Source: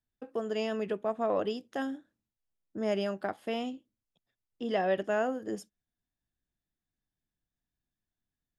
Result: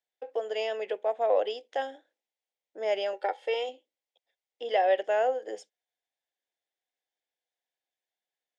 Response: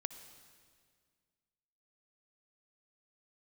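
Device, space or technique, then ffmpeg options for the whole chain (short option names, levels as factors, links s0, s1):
phone speaker on a table: -filter_complex "[0:a]highpass=f=430:w=0.5412,highpass=f=430:w=1.3066,equalizer=f=510:t=q:w=4:g=8,equalizer=f=780:t=q:w=4:g=8,equalizer=f=1200:t=q:w=4:g=-9,equalizer=f=2100:t=q:w=4:g=7,equalizer=f=3300:t=q:w=4:g=6,lowpass=f=7700:w=0.5412,lowpass=f=7700:w=1.3066,asettb=1/sr,asplit=3[s0][s1][s2];[s0]atrim=end=3.134[s3];[s1]atrim=start=3.13:end=3.69,asetpts=PTS-STARTPTS,afade=t=in:d=0.004:c=qsin,afade=t=out:st=0.556:d=0.004:c=qsin,aecho=1:1:2.2:0.69,atrim=end_sample=24696[s4];[s2]atrim=start=3.686[s5];[s3][s4]acrossfade=d=0.004:c1=hsin:c2=qsin[s6];[s6][s5]acrossfade=d=0.004:c1=qsin:c2=hsin"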